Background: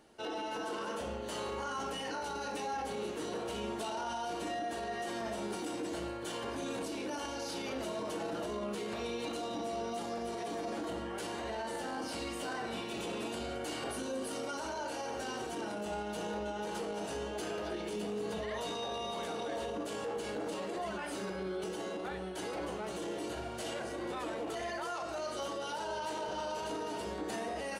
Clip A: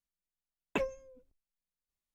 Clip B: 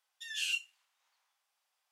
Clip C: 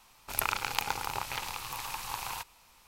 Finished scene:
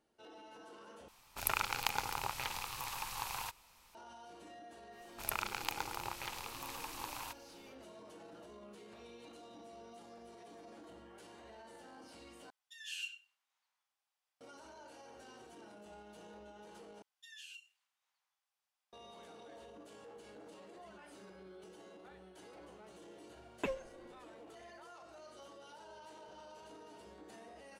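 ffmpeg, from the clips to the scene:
-filter_complex "[3:a]asplit=2[a][b];[2:a]asplit=2[c][d];[0:a]volume=-16.5dB[e];[c]asplit=2[f][g];[g]adelay=96,lowpass=f=2k:p=1,volume=-6dB,asplit=2[h][i];[i]adelay=96,lowpass=f=2k:p=1,volume=0.18,asplit=2[j][k];[k]adelay=96,lowpass=f=2k:p=1,volume=0.18[l];[f][h][j][l]amix=inputs=4:normalize=0[m];[d]acompressor=threshold=-45dB:ratio=5:attack=58:release=86:knee=6:detection=rms[n];[e]asplit=4[o][p][q][r];[o]atrim=end=1.084[s];[a]atrim=end=2.87,asetpts=PTS-STARTPTS,volume=-4dB[t];[p]atrim=start=3.946:end=12.504[u];[m]atrim=end=1.91,asetpts=PTS-STARTPTS,volume=-9.5dB[v];[q]atrim=start=14.406:end=17.024[w];[n]atrim=end=1.91,asetpts=PTS-STARTPTS,volume=-9.5dB[x];[r]atrim=start=18.926[y];[b]atrim=end=2.87,asetpts=PTS-STARTPTS,volume=-7.5dB,afade=t=in:d=0.1,afade=t=out:st=2.77:d=0.1,adelay=4900[z];[1:a]atrim=end=2.14,asetpts=PTS-STARTPTS,volume=-5dB,afade=t=in:d=0.004:c=hsin,afade=t=out:st=2.136:d=0.004:c=hsin,adelay=22880[aa];[s][t]acrossfade=d=0.004:c1=hsin:c2=hsin[ab];[ab][u]acrossfade=d=0.004:c1=hsin:c2=hsin[ac];[ac][v]acrossfade=d=0.004:c1=hsin:c2=hsin[ad];[ad][w]acrossfade=d=0.004:c1=hsin:c2=hsin[ae];[ae][x]acrossfade=d=0.004:c1=hsin:c2=hsin[af];[af][y]acrossfade=d=0.004:c1=hsin:c2=hsin[ag];[ag][z][aa]amix=inputs=3:normalize=0"

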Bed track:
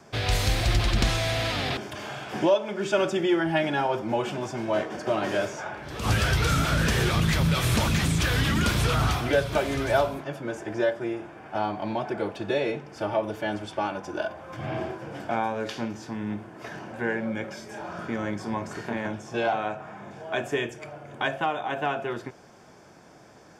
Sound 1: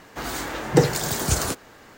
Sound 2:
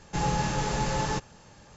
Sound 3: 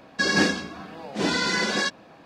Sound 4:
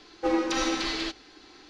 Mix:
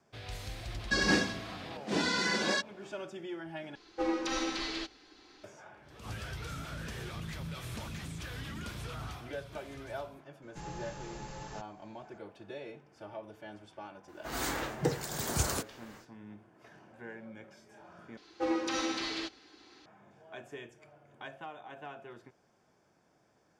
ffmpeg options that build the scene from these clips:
-filter_complex "[4:a]asplit=2[a][b];[0:a]volume=-18dB[c];[1:a]dynaudnorm=f=170:g=3:m=12.5dB[d];[b]highpass=69[e];[c]asplit=3[f][g][h];[f]atrim=end=3.754[i];[a]atrim=end=1.69,asetpts=PTS-STARTPTS,volume=-6.5dB[j];[g]atrim=start=5.436:end=18.174[k];[e]atrim=end=1.69,asetpts=PTS-STARTPTS,volume=-6dB[l];[h]atrim=start=19.856[m];[3:a]atrim=end=2.25,asetpts=PTS-STARTPTS,volume=-6.5dB,afade=t=in:d=0.004:c=hsin,afade=t=out:st=2.246:d=0.004:c=hsin,adelay=720[n];[2:a]atrim=end=1.76,asetpts=PTS-STARTPTS,volume=-16.5dB,afade=t=in:d=0.004:c=hsin,afade=t=out:st=1.756:d=0.004:c=hsin,adelay=459522S[o];[d]atrim=end=1.97,asetpts=PTS-STARTPTS,volume=-15.5dB,afade=t=in:d=0.004:c=hsin,afade=t=out:st=1.966:d=0.004:c=hsin,adelay=14080[p];[i][j]acrossfade=d=0.004:c1=hsin:c2=hsin[q];[q][k]acrossfade=d=0.004:c1=hsin:c2=hsin[r];[r][l]acrossfade=d=0.004:c1=hsin:c2=hsin[s];[s][m]acrossfade=d=0.004:c1=hsin:c2=hsin[t];[t][n][o][p]amix=inputs=4:normalize=0"

